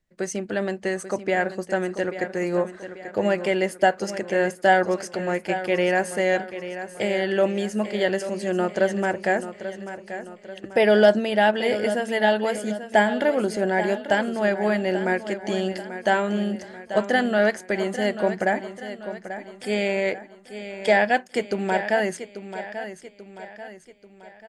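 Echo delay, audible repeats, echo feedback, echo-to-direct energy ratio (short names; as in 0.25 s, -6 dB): 0.838 s, 4, 47%, -10.5 dB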